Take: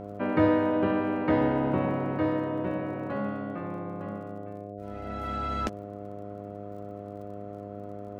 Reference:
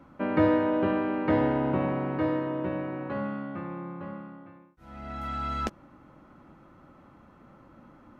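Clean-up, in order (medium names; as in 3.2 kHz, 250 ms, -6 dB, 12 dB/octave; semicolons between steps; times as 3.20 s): de-click; de-hum 101.7 Hz, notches 7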